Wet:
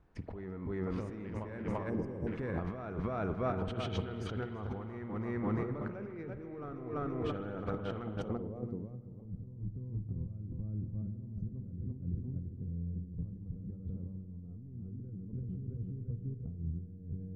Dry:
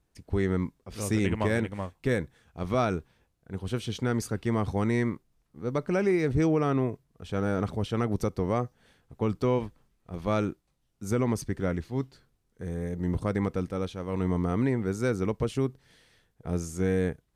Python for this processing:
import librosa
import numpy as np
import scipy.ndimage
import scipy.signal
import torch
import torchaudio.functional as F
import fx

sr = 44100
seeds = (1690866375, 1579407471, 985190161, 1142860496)

y = 10.0 ** (-17.5 / 20.0) * np.tanh(x / 10.0 ** (-17.5 / 20.0))
y = fx.echo_feedback(y, sr, ms=338, feedback_pct=44, wet_db=-7.0)
y = fx.spec_erase(y, sr, start_s=1.9, length_s=0.37, low_hz=1000.0, high_hz=4700.0)
y = fx.riaa(y, sr, side='recording', at=(8.56, 9.25))
y = fx.over_compress(y, sr, threshold_db=-38.0, ratio=-1.0)
y = fx.high_shelf(y, sr, hz=4200.0, db=12.0)
y = fx.rev_spring(y, sr, rt60_s=2.3, pass_ms=(47,), chirp_ms=35, drr_db=9.0)
y = fx.filter_sweep_lowpass(y, sr, from_hz=1400.0, to_hz=140.0, start_s=8.16, end_s=8.91, q=0.98)
y = fx.sustainer(y, sr, db_per_s=27.0, at=(14.73, 15.67))
y = F.gain(torch.from_numpy(y), -1.0).numpy()